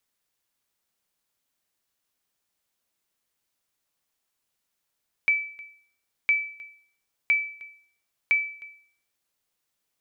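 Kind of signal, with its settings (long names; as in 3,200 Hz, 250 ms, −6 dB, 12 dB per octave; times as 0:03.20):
ping with an echo 2,310 Hz, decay 0.53 s, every 1.01 s, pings 4, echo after 0.31 s, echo −22.5 dB −14.5 dBFS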